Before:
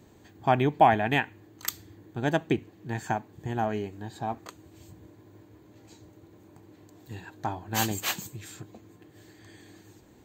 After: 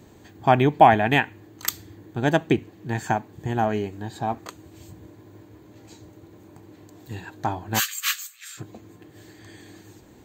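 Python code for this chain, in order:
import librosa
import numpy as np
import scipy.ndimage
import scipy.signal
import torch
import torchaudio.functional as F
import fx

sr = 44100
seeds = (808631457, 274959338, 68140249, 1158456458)

y = fx.brickwall_highpass(x, sr, low_hz=1100.0, at=(7.78, 8.57), fade=0.02)
y = F.gain(torch.from_numpy(y), 5.5).numpy()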